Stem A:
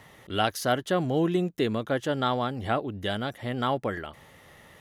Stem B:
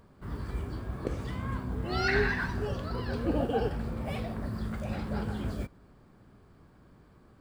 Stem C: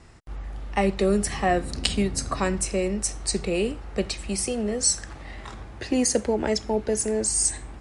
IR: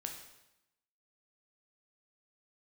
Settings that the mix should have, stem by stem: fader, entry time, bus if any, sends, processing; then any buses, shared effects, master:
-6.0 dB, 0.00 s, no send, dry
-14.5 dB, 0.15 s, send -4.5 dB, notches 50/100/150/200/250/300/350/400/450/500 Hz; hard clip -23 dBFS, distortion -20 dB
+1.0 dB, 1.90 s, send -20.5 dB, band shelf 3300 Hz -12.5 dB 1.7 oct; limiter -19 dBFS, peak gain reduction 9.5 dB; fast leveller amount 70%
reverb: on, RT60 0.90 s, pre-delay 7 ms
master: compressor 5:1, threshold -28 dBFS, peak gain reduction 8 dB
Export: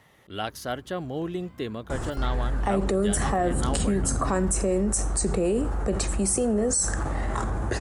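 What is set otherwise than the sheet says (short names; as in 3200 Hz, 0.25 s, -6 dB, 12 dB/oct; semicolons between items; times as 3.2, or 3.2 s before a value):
stem B: send off; master: missing compressor 5:1, threshold -28 dBFS, peak gain reduction 8 dB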